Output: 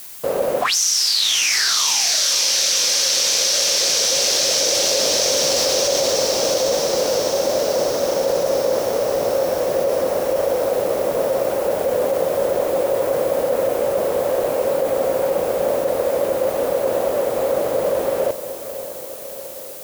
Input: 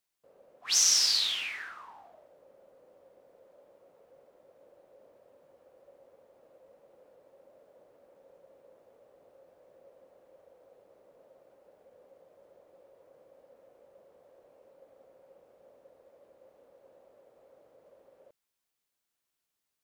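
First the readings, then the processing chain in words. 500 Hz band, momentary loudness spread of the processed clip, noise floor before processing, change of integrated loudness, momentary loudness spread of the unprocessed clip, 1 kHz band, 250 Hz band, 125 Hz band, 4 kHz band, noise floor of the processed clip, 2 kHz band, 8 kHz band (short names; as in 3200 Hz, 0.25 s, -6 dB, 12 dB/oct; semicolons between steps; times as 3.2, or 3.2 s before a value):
+39.0 dB, 6 LU, -85 dBFS, +7.5 dB, 19 LU, +29.0 dB, +37.0 dB, +36.0 dB, +16.0 dB, -32 dBFS, +18.0 dB, +16.0 dB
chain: high shelf 7200 Hz +11 dB; diffused feedback echo 0.548 s, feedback 66%, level -13 dB; fast leveller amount 100%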